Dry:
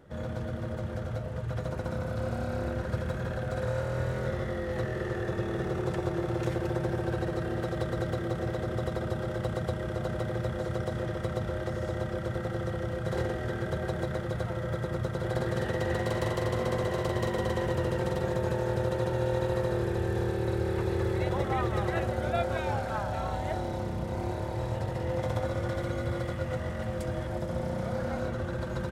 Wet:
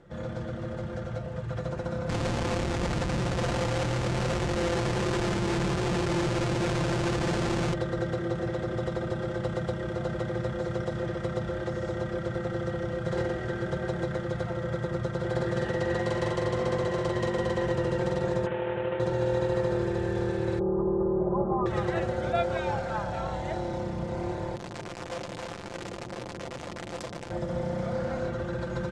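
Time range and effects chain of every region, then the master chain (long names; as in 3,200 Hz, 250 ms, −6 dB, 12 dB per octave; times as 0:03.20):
0:02.09–0:07.74: variable-slope delta modulation 16 kbit/s + low-shelf EQ 330 Hz +5.5 dB + comparator with hysteresis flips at −41 dBFS
0:18.46–0:19.00: variable-slope delta modulation 16 kbit/s + low-shelf EQ 190 Hz −10.5 dB
0:20.59–0:21.66: elliptic low-pass filter 1,100 Hz, stop band 60 dB + comb filter 5 ms, depth 88%
0:24.56–0:27.31: sign of each sample alone + saturating transformer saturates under 330 Hz
whole clip: low-pass filter 8,200 Hz 24 dB per octave; comb filter 5.8 ms, depth 44%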